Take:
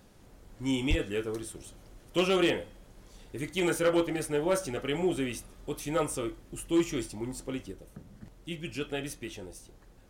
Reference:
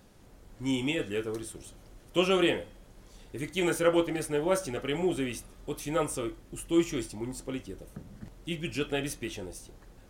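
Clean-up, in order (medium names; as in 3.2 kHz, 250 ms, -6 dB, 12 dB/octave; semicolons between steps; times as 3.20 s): clip repair -19 dBFS; 0.89–1.01 s: high-pass 140 Hz 24 dB/octave; trim 0 dB, from 7.72 s +3.5 dB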